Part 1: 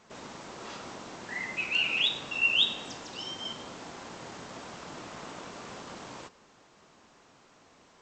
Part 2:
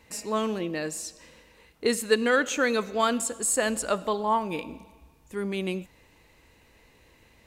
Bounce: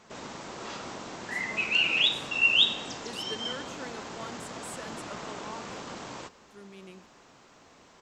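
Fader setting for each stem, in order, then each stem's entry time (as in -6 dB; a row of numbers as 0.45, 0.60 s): +3.0, -18.5 dB; 0.00, 1.20 s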